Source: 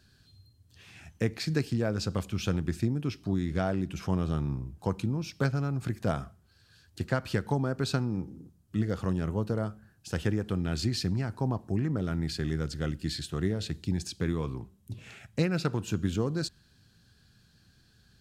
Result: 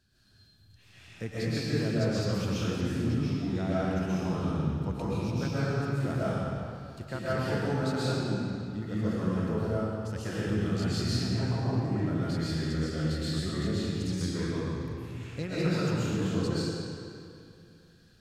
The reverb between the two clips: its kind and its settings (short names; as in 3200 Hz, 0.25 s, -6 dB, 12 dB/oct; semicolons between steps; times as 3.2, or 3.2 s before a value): digital reverb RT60 2.5 s, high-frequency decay 0.85×, pre-delay 90 ms, DRR -10 dB; gain -9 dB